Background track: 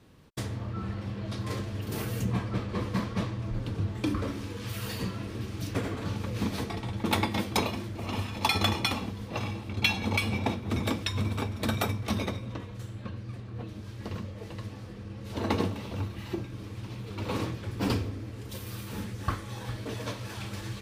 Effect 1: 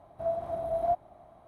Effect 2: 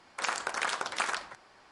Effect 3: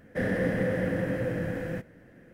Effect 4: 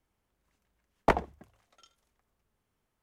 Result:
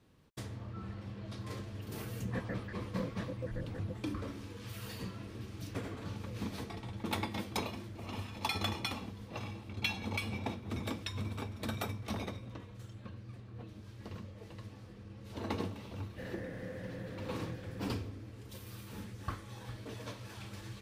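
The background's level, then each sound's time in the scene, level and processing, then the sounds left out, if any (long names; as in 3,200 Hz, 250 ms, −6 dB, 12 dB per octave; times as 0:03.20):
background track −9 dB
0:02.17: mix in 3 −9.5 dB + time-frequency cells dropped at random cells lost 76%
0:11.06: mix in 4 −8 dB + downward compressor 3 to 1, threshold −38 dBFS
0:16.02: mix in 3 −16.5 dB
not used: 1, 2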